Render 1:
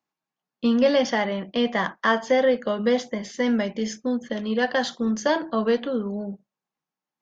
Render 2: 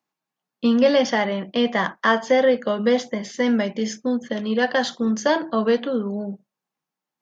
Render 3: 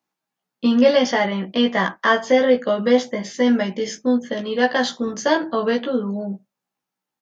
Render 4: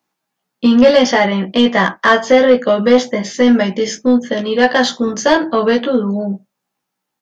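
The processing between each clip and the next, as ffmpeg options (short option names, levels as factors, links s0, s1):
-af "highpass=77,volume=1.33"
-filter_complex "[0:a]asplit=2[s0][s1];[s1]adelay=16,volume=0.75[s2];[s0][s2]amix=inputs=2:normalize=0"
-af "asoftclip=type=tanh:threshold=0.376,volume=2.37"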